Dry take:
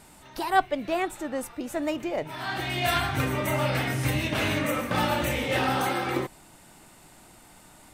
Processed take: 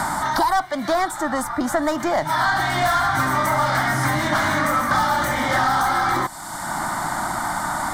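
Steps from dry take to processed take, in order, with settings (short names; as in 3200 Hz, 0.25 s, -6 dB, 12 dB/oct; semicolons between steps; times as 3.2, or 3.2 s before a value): overdrive pedal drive 22 dB, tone 3300 Hz, clips at -8 dBFS; fixed phaser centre 1100 Hz, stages 4; three-band squash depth 100%; gain +2 dB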